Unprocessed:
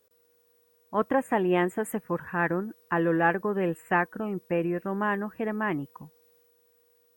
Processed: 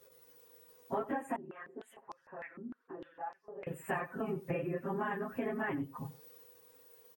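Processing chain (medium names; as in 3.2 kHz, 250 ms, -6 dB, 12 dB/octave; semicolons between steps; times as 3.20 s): phase randomisation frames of 50 ms; comb 7.4 ms, depth 59%; compression 12:1, threshold -38 dBFS, peak gain reduction 22 dB; delay 92 ms -17.5 dB; 1.36–3.67 s: step-sequenced band-pass 6.6 Hz 240–5300 Hz; trim +5 dB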